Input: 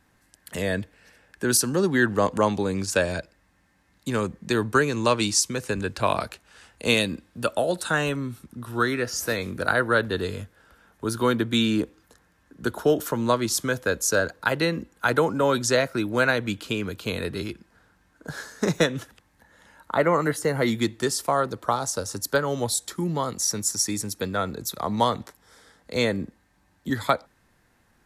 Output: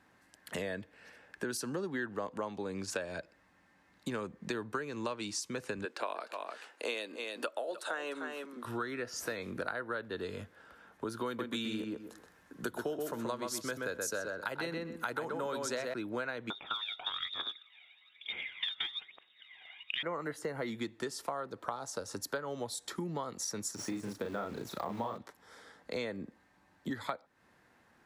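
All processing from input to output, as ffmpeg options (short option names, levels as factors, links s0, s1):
-filter_complex "[0:a]asettb=1/sr,asplit=3[s0][s1][s2];[s0]atrim=end=5.854[s3];[s1]atrim=start=5.85:end=8.65,asetpts=PTS-STARTPTS,afade=t=in:d=0.004:c=qsin,afade=t=out:st=2.796:d=0.004:c=qsin,highpass=f=310:w=0.5412,highpass=f=310:w=1.3066,aecho=1:1:302:0.237,atrim=end_sample=123480[s4];[s2]atrim=start=8.646[s5];[s3][s4]acrossfade=d=0.004:c1=hsin:c2=qsin[s6];[s6][s5]acrossfade=d=0.004:c1=qsin:c2=hsin,asettb=1/sr,asplit=3[s7][s8][s9];[s7]atrim=end=11.264[s10];[s8]atrim=start=11.26:end=15.94,asetpts=PTS-STARTPTS,afade=t=in:d=0.004:c=qsin,afade=t=out:st=4.676:d=0.004:c=qsin,highshelf=f=6100:g=12,asplit=2[s11][s12];[s12]adelay=127,lowpass=f=2700:p=1,volume=0.668,asplit=2[s13][s14];[s14]adelay=127,lowpass=f=2700:p=1,volume=0.18,asplit=2[s15][s16];[s16]adelay=127,lowpass=f=2700:p=1,volume=0.18[s17];[s11][s13][s15][s17]amix=inputs=4:normalize=0,atrim=end_sample=206388[s18];[s9]atrim=start=15.936[s19];[s10][s18]acrossfade=d=0.004:c1=hsin:c2=qsin[s20];[s20][s19]acrossfade=d=0.004:c1=qsin:c2=hsin,asettb=1/sr,asplit=3[s21][s22][s23];[s21]atrim=end=16.504[s24];[s22]atrim=start=16.5:end=20.03,asetpts=PTS-STARTPTS,afade=t=in:d=0.004:c=qsin,afade=t=out:st=3.526:d=0.004:c=qsin,lowpass=f=3200:t=q:w=0.5098,lowpass=f=3200:t=q:w=0.6013,lowpass=f=3200:t=q:w=0.9,lowpass=f=3200:t=q:w=2.563,afreqshift=-3800,aphaser=in_gain=1:out_gain=1:delay=1.5:decay=0.63:speed=1.1:type=triangular[s25];[s23]atrim=start=20.026[s26];[s24][s25]acrossfade=d=0.004:c1=hsin:c2=qsin[s27];[s27][s26]acrossfade=d=0.004:c1=qsin:c2=hsin,asettb=1/sr,asplit=3[s28][s29][s30];[s28]atrim=end=23.754[s31];[s29]atrim=start=23.75:end=25.18,asetpts=PTS-STARTPTS,afade=t=in:d=0.004:c=qsin,afade=t=out:st=1.426:d=0.004:c=qsin,acrusher=bits=3:mode=log:mix=0:aa=0.000001,deesser=0.85,asplit=2[s32][s33];[s33]adelay=35,volume=0.75[s34];[s32][s34]amix=inputs=2:normalize=0,atrim=end_sample=63063[s35];[s30]atrim=start=25.176[s36];[s31][s35]acrossfade=d=0.004:c1=hsin:c2=qsin[s37];[s37][s36]acrossfade=d=0.004:c1=qsin:c2=hsin,highpass=f=270:p=1,highshelf=f=5100:g=-11.5,acompressor=threshold=0.0158:ratio=6,volume=1.12"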